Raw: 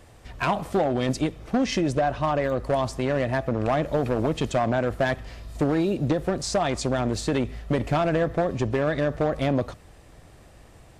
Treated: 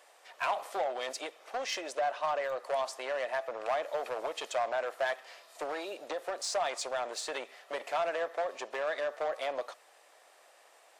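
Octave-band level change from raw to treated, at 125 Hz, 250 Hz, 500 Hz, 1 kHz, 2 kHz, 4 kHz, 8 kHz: under -40 dB, -26.5 dB, -9.0 dB, -6.0 dB, -5.5 dB, -5.0 dB, -4.5 dB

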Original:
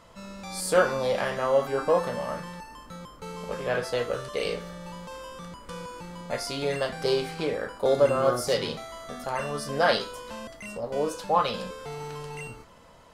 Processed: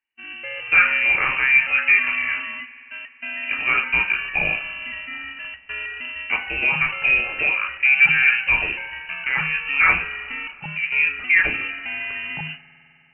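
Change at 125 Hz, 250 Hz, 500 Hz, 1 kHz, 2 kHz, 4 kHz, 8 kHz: -3.0 dB, -5.5 dB, -15.0 dB, -0.5 dB, +19.0 dB, +3.5 dB, under -40 dB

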